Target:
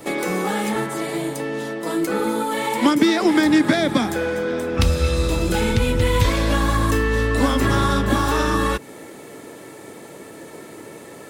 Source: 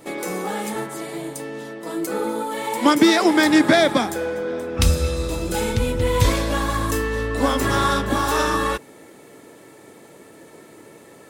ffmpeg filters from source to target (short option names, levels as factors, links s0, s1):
-filter_complex "[0:a]acrossover=split=320|1100|4300[s0][s1][s2][s3];[s0]acompressor=threshold=0.0794:ratio=4[s4];[s1]acompressor=threshold=0.0224:ratio=4[s5];[s2]acompressor=threshold=0.0251:ratio=4[s6];[s3]acompressor=threshold=0.00708:ratio=4[s7];[s4][s5][s6][s7]amix=inputs=4:normalize=0,volume=2.11"